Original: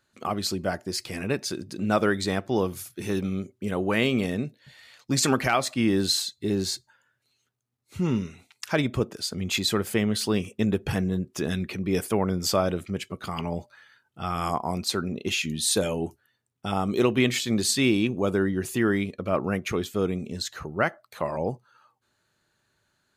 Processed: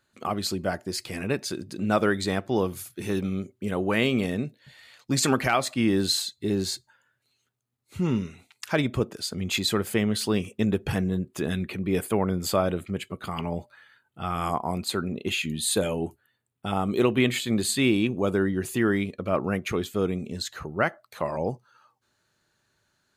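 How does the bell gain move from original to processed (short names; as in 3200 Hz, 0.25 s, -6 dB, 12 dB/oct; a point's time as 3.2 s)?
bell 5600 Hz 0.32 oct
10.95 s -4 dB
11.53 s -14.5 dB
17.75 s -14.5 dB
18.28 s -4.5 dB
20.86 s -4.5 dB
21.36 s +4.5 dB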